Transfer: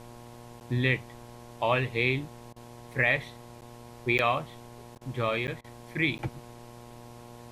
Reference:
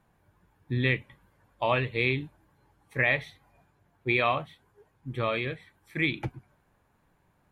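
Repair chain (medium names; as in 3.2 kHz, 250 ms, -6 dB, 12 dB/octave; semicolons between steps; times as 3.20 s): de-hum 119.3 Hz, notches 9; interpolate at 0.60/3.61/4.18/4.95/5.47/6.18 s, 9.3 ms; interpolate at 2.53/4.98/5.61 s, 31 ms; noise reduction 20 dB, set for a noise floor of -48 dBFS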